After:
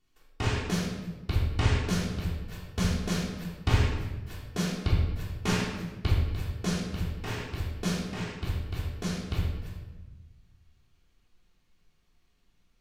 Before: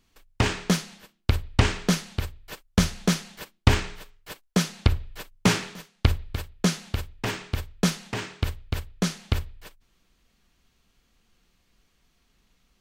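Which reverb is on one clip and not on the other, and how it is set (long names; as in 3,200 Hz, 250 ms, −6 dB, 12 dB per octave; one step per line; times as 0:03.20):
rectangular room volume 630 cubic metres, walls mixed, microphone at 3.4 metres
level −13.5 dB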